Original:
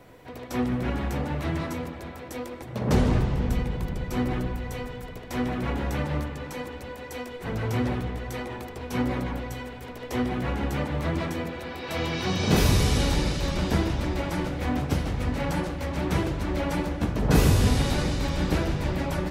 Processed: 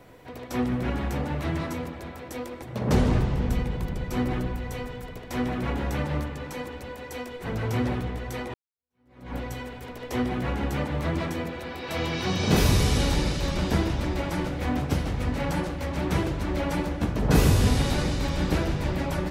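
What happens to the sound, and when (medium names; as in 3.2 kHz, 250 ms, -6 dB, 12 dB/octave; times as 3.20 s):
8.54–9.35 s: fade in exponential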